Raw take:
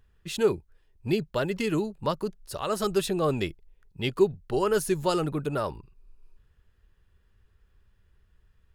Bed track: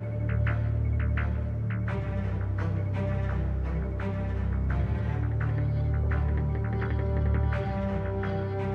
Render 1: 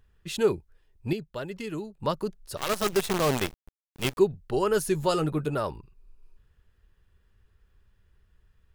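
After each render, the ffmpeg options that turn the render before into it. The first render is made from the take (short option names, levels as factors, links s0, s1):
-filter_complex "[0:a]asettb=1/sr,asplit=3[s0][s1][s2];[s0]atrim=end=2.574[s3];[s1]atrim=start=2.57:end=4.18,asetpts=PTS-STARTPTS,afade=t=in:d=0.004:c=qsin,afade=t=out:st=1.606:d=0.004:c=qsin,acrusher=bits=5:dc=4:mix=0:aa=0.000001[s4];[s2]atrim=start=4.176[s5];[s3][s4]acrossfade=d=0.004:c1=hsin:c2=qsin[s6];[s6][s5]acrossfade=d=0.004:c1=qsin:c2=hsin,asettb=1/sr,asplit=3[s7][s8][s9];[s7]atrim=end=4.934[s10];[s8]atrim=start=4.93:end=5.54,asetpts=PTS-STARTPTS,afade=t=in:d=0.004:c=qsin,afade=t=out:st=0.606:d=0.004:c=qsin,asplit=2[s11][s12];[s12]adelay=13,volume=0.355[s13];[s11][s13]amix=inputs=2:normalize=0,atrim=end_sample=26901[s14];[s9]atrim=start=5.536[s15];[s10][s14]acrossfade=d=0.004:c1=hsin:c2=qsin[s16];[s16][s15]acrossfade=d=0.004:c1=qsin:c2=hsin,asplit=3[s17][s18][s19];[s17]atrim=end=1.132[s20];[s18]atrim=start=1.128:end=2.002,asetpts=PTS-STARTPTS,volume=0.422[s21];[s19]atrim=start=1.998[s22];[s20][s21]acrossfade=d=0.004:c1=hsin:c2=hsin[s23];[s23][s22]acrossfade=d=0.004:c1=hsin:c2=hsin"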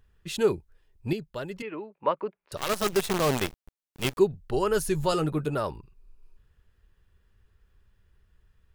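-filter_complex "[0:a]asettb=1/sr,asplit=3[s0][s1][s2];[s0]atrim=end=1.624[s3];[s1]atrim=start=1.62:end=2.52,asetpts=PTS-STARTPTS,afade=t=in:d=0.004:c=qsin,afade=t=out:st=0.896:d=0.004:c=qsin,highpass=330,equalizer=f=550:t=q:w=4:g=4,equalizer=f=1000:t=q:w=4:g=5,equalizer=f=2300:t=q:w=4:g=7,lowpass=f=2600:w=0.5412,lowpass=f=2600:w=1.3066[s4];[s2]atrim=start=2.516[s5];[s3][s4]acrossfade=d=0.004:c1=hsin:c2=qsin[s6];[s6][s5]acrossfade=d=0.004:c1=qsin:c2=hsin,asettb=1/sr,asplit=3[s7][s8][s9];[s7]atrim=end=4.334[s10];[s8]atrim=start=4.33:end=5.13,asetpts=PTS-STARTPTS,afade=t=in:d=0.004:c=qsin,afade=t=out:st=0.796:d=0.004:c=qsin,asubboost=boost=9.5:cutoff=130[s11];[s9]atrim=start=5.126[s12];[s10][s11]acrossfade=d=0.004:c1=hsin:c2=qsin[s13];[s13][s12]acrossfade=d=0.004:c1=qsin:c2=hsin"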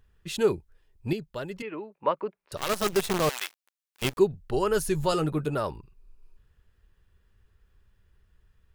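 -filter_complex "[0:a]asettb=1/sr,asplit=3[s0][s1][s2];[s0]atrim=end=3.294[s3];[s1]atrim=start=3.29:end=4.02,asetpts=PTS-STARTPTS,afade=t=in:d=0.004:c=qsin,afade=t=out:st=0.726:d=0.004:c=qsin,highpass=1400[s4];[s2]atrim=start=4.016[s5];[s3][s4]acrossfade=d=0.004:c1=hsin:c2=qsin[s6];[s6][s5]acrossfade=d=0.004:c1=qsin:c2=hsin"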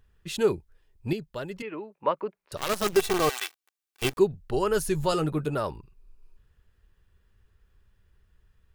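-filter_complex "[0:a]asettb=1/sr,asplit=3[s0][s1][s2];[s0]atrim=end=2.964[s3];[s1]atrim=start=2.96:end=4.12,asetpts=PTS-STARTPTS,afade=t=in:d=0.004:c=qsin,afade=t=out:st=1.156:d=0.004:c=qsin,aecho=1:1:2.6:0.55,atrim=end_sample=51156[s4];[s2]atrim=start=4.116[s5];[s3][s4]acrossfade=d=0.004:c1=hsin:c2=qsin[s6];[s6][s5]acrossfade=d=0.004:c1=qsin:c2=hsin"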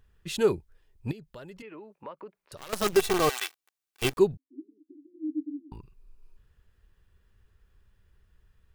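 -filter_complex "[0:a]asettb=1/sr,asplit=3[s0][s1][s2];[s0]atrim=end=1.114[s3];[s1]atrim=start=1.11:end=2.73,asetpts=PTS-STARTPTS,afade=t=in:d=0.004:c=qsin,afade=t=out:st=1.616:d=0.004:c=qsin,acompressor=threshold=0.00562:ratio=2.5:attack=3.2:release=140:knee=1:detection=peak[s4];[s2]atrim=start=2.726[s5];[s3][s4]acrossfade=d=0.004:c1=hsin:c2=qsin[s6];[s6][s5]acrossfade=d=0.004:c1=qsin:c2=hsin,asettb=1/sr,asplit=3[s7][s8][s9];[s7]atrim=end=4.374[s10];[s8]atrim=start=4.37:end=5.72,asetpts=PTS-STARTPTS,afade=t=in:d=0.004:c=qsin,afade=t=out:st=1.346:d=0.004:c=qsin,asuperpass=centerf=290:order=8:qfactor=5[s11];[s9]atrim=start=5.716[s12];[s10][s11]acrossfade=d=0.004:c1=hsin:c2=qsin[s13];[s13][s12]acrossfade=d=0.004:c1=qsin:c2=hsin"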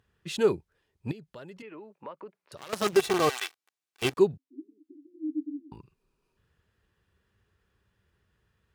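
-af "highpass=110,highshelf=f=11000:g=-10.5"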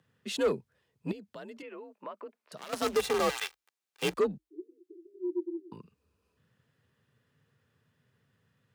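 -af "asoftclip=type=tanh:threshold=0.0891,afreqshift=48"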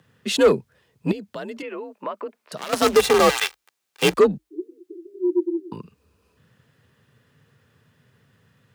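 -af "volume=3.98"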